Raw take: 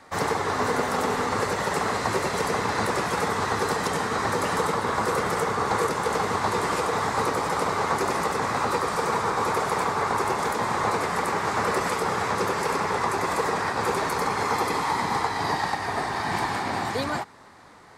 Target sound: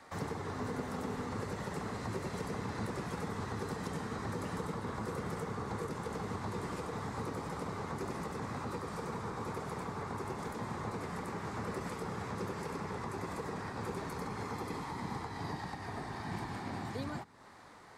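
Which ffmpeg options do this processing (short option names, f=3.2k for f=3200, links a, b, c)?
-filter_complex "[0:a]acrossover=split=300[a][b];[b]acompressor=threshold=-42dB:ratio=2.5[c];[a][c]amix=inputs=2:normalize=0,volume=-5.5dB"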